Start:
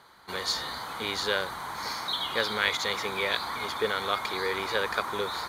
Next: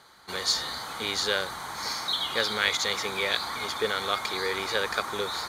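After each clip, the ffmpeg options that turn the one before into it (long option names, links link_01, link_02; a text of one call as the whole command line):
ffmpeg -i in.wav -af "equalizer=frequency=6700:width_type=o:width=1.4:gain=6.5,bandreject=frequency=990:width=14" out.wav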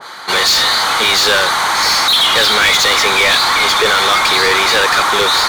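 ffmpeg -i in.wav -filter_complex "[0:a]asplit=2[link_01][link_02];[link_02]highpass=frequency=720:poles=1,volume=29dB,asoftclip=type=tanh:threshold=-8.5dB[link_03];[link_01][link_03]amix=inputs=2:normalize=0,lowpass=frequency=4000:poles=1,volume=-6dB,adynamicequalizer=threshold=0.0355:dfrequency=1700:dqfactor=0.7:tfrequency=1700:tqfactor=0.7:attack=5:release=100:ratio=0.375:range=1.5:mode=boostabove:tftype=highshelf,volume=4dB" out.wav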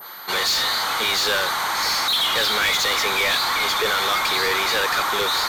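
ffmpeg -i in.wav -af "aeval=exprs='val(0)+0.0355*sin(2*PI*13000*n/s)':channel_layout=same,volume=-9dB" out.wav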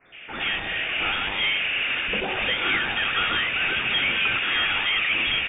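ffmpeg -i in.wav -filter_complex "[0:a]acrusher=bits=7:mix=0:aa=0.000001,acrossover=split=250|2300[link_01][link_02][link_03];[link_01]adelay=50[link_04];[link_02]adelay=120[link_05];[link_04][link_05][link_03]amix=inputs=3:normalize=0,lowpass=frequency=3100:width_type=q:width=0.5098,lowpass=frequency=3100:width_type=q:width=0.6013,lowpass=frequency=3100:width_type=q:width=0.9,lowpass=frequency=3100:width_type=q:width=2.563,afreqshift=-3700" out.wav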